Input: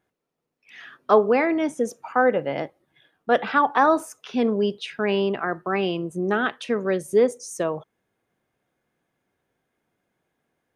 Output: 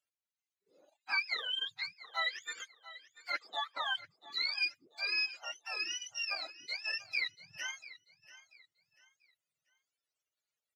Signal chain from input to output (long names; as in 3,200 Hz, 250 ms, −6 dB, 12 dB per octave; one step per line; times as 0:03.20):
frequency axis turned over on the octave scale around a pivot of 1,000 Hz
high-shelf EQ 6,900 Hz −5 dB
reverb reduction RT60 0.78 s
first difference
transient designer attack 0 dB, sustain −8 dB
repeating echo 689 ms, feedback 31%, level −17 dB